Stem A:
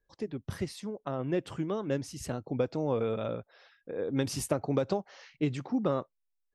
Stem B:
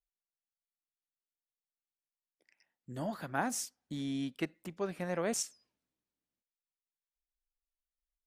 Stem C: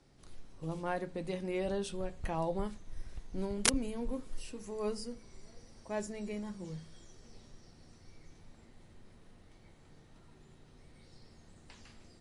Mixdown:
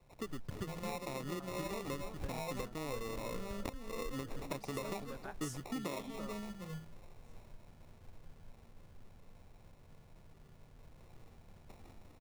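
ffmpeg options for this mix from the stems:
ffmpeg -i stem1.wav -i stem2.wav -i stem3.wav -filter_complex "[0:a]equalizer=frequency=1200:width_type=o:width=0.88:gain=5.5,volume=-4dB,asplit=3[link_01][link_02][link_03];[link_02]volume=-17.5dB[link_04];[1:a]tiltshelf=frequency=970:gain=-4.5,adelay=1900,volume=-15.5dB[link_05];[2:a]aecho=1:1:1.6:0.65,volume=-2.5dB[link_06];[link_03]apad=whole_len=448194[link_07];[link_05][link_07]sidechaingate=range=-33dB:threshold=-57dB:ratio=16:detection=peak[link_08];[link_01][link_06]amix=inputs=2:normalize=0,acrusher=samples=28:mix=1:aa=0.000001,acompressor=threshold=-37dB:ratio=8,volume=0dB[link_09];[link_04]aecho=0:1:332:1[link_10];[link_08][link_09][link_10]amix=inputs=3:normalize=0" out.wav

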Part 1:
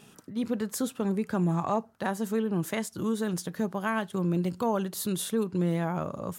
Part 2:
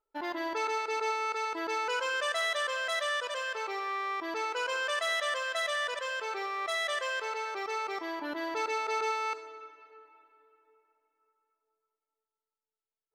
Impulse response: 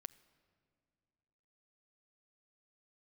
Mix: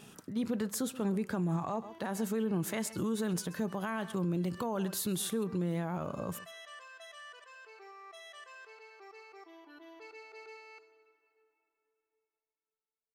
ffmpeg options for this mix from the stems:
-filter_complex "[0:a]volume=0.5dB,asplit=3[link_01][link_02][link_03];[link_02]volume=-21.5dB[link_04];[1:a]aecho=1:1:2.7:0.8,adelay=1450,volume=-20dB[link_05];[link_03]apad=whole_len=643538[link_06];[link_05][link_06]sidechaincompress=threshold=-37dB:ratio=8:attack=16:release=141[link_07];[link_04]aecho=0:1:131:1[link_08];[link_01][link_07][link_08]amix=inputs=3:normalize=0,alimiter=level_in=1dB:limit=-24dB:level=0:latency=1:release=66,volume=-1dB"

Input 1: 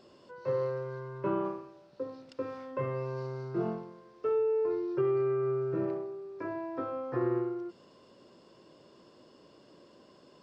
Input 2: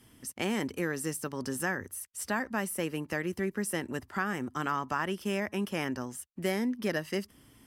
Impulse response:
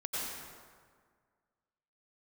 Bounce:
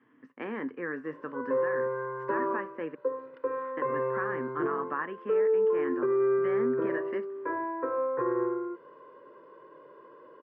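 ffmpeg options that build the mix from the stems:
-filter_complex "[0:a]aecho=1:1:2:0.73,adelay=1050,volume=0dB[link_01];[1:a]flanger=delay=6.8:depth=8.7:regen=-71:speed=0.4:shape=sinusoidal,volume=-2dB,asplit=3[link_02][link_03][link_04];[link_02]atrim=end=2.95,asetpts=PTS-STARTPTS,afade=type=out:start_time=2.946:duration=0.004:curve=hsin[link_05];[link_03]atrim=start=2.95:end=3.77,asetpts=PTS-STARTPTS,volume=0[link_06];[link_04]atrim=start=3.77,asetpts=PTS-STARTPTS,afade=type=in:duration=0.004:curve=hsin[link_07];[link_05][link_06][link_07]concat=n=3:v=0:a=1[link_08];[link_01][link_08]amix=inputs=2:normalize=0,highpass=frequency=160:width=0.5412,highpass=frequency=160:width=1.3066,equalizer=frequency=190:width_type=q:width=4:gain=-8,equalizer=frequency=270:width_type=q:width=4:gain=8,equalizer=frequency=470:width_type=q:width=4:gain=6,equalizer=frequency=700:width_type=q:width=4:gain=-3,equalizer=frequency=1100:width_type=q:width=4:gain=10,equalizer=frequency=1700:width_type=q:width=4:gain=8,lowpass=frequency=2200:width=0.5412,lowpass=frequency=2200:width=1.3066,alimiter=limit=-20dB:level=0:latency=1:release=158"

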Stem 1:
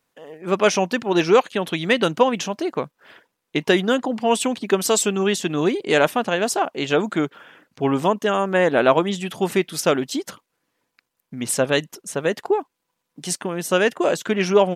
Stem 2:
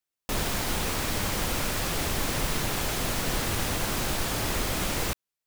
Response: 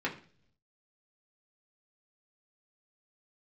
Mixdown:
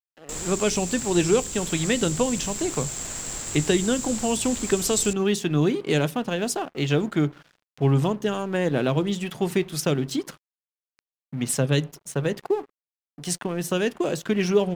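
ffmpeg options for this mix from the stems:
-filter_complex "[0:a]equalizer=frequency=140:width_type=o:width=0.48:gain=12,volume=-2.5dB,asplit=2[link_01][link_02];[link_02]volume=-17.5dB[link_03];[1:a]lowpass=frequency=7500:width_type=q:width=14,volume=-8dB[link_04];[2:a]atrim=start_sample=2205[link_05];[link_03][link_05]afir=irnorm=-1:irlink=0[link_06];[link_01][link_04][link_06]amix=inputs=3:normalize=0,acrossover=split=410|3000[link_07][link_08][link_09];[link_08]acompressor=threshold=-30dB:ratio=4[link_10];[link_07][link_10][link_09]amix=inputs=3:normalize=0,aeval=exprs='sgn(val(0))*max(abs(val(0))-0.00668,0)':channel_layout=same"

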